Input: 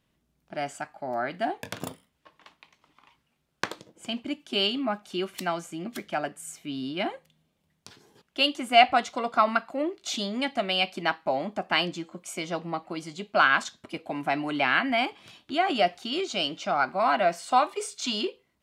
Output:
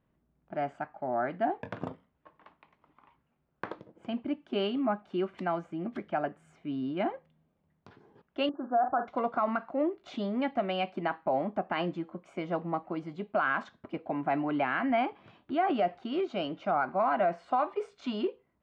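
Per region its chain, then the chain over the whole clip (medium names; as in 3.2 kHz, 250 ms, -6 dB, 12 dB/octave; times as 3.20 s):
8.49–9.08 s: Chebyshev low-pass 1.7 kHz, order 8 + bass shelf 210 Hz -10 dB + doubling 45 ms -12 dB
whole clip: low-pass 1.4 kHz 12 dB/octave; peak limiter -19 dBFS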